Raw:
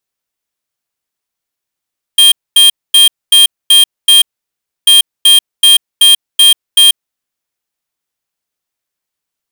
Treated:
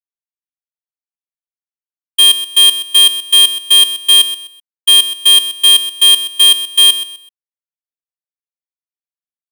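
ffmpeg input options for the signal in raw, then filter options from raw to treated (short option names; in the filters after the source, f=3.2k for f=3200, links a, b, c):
-f lavfi -i "aevalsrc='0.596*(2*lt(mod(3200*t,1),0.5)-1)*clip(min(mod(mod(t,2.69),0.38),0.14-mod(mod(t,2.69),0.38))/0.005,0,1)*lt(mod(t,2.69),2.28)':d=5.38:s=44100"
-af "agate=range=-33dB:threshold=-5dB:ratio=3:detection=peak,equalizer=f=600:t=o:w=2.5:g=5.5,aecho=1:1:127|254|381:0.224|0.0627|0.0176"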